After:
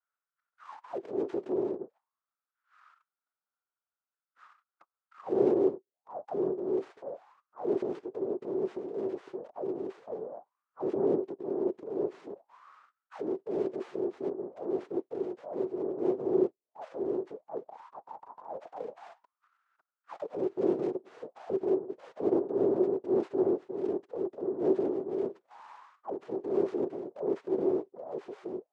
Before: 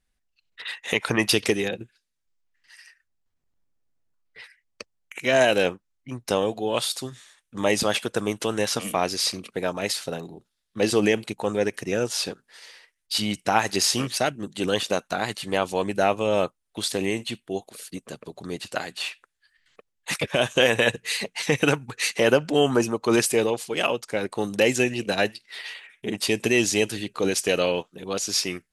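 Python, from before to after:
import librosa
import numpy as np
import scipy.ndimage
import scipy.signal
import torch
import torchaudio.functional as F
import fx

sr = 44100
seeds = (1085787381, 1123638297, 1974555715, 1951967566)

y = fx.noise_vocoder(x, sr, seeds[0], bands=2)
y = fx.spec_gate(y, sr, threshold_db=-30, keep='strong')
y = fx.high_shelf(y, sr, hz=2600.0, db=-12.0)
y = fx.transient(y, sr, attack_db=-10, sustain_db=5)
y = fx.dynamic_eq(y, sr, hz=1000.0, q=1.0, threshold_db=-38.0, ratio=4.0, max_db=-3)
y = fx.auto_wah(y, sr, base_hz=380.0, top_hz=1400.0, q=7.9, full_db=-30.0, direction='down')
y = y * librosa.db_to_amplitude(7.5)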